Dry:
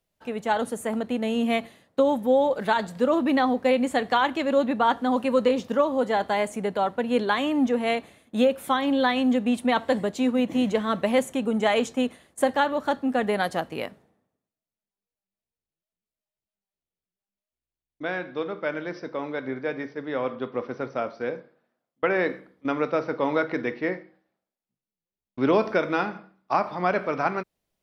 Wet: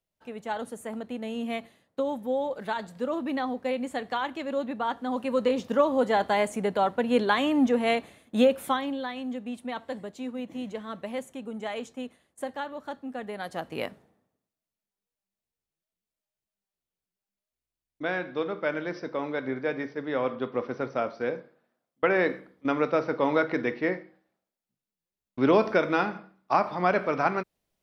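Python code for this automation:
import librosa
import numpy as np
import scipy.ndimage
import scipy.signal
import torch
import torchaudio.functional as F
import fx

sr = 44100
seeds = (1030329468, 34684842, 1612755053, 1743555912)

y = fx.gain(x, sr, db=fx.line((4.96, -8.0), (5.86, 0.0), (8.63, 0.0), (9.03, -12.0), (13.37, -12.0), (13.84, 0.0)))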